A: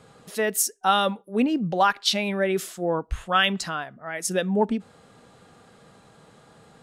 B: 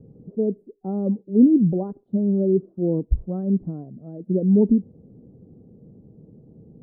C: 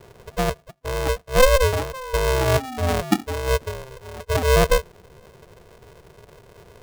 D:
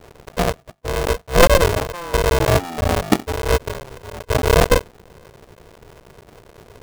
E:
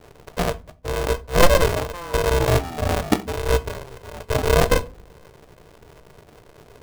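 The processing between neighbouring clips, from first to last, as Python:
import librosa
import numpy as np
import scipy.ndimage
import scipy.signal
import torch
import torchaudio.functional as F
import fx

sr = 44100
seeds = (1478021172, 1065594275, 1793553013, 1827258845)

y1 = scipy.signal.sosfilt(scipy.signal.cheby2(4, 80, 2200.0, 'lowpass', fs=sr, output='sos'), x)
y1 = F.gain(torch.from_numpy(y1), 9.0).numpy()
y2 = fx.spec_paint(y1, sr, seeds[0], shape='fall', start_s=1.93, length_s=1.19, low_hz=400.0, high_hz=800.0, level_db=-33.0)
y2 = y2 * np.sign(np.sin(2.0 * np.pi * 260.0 * np.arange(len(y2)) / sr))
y3 = fx.cycle_switch(y2, sr, every=3, mode='muted')
y3 = F.gain(torch.from_numpy(y3), 4.5).numpy()
y4 = fx.room_shoebox(y3, sr, seeds[1], volume_m3=190.0, walls='furnished', distance_m=0.4)
y4 = F.gain(torch.from_numpy(y4), -3.5).numpy()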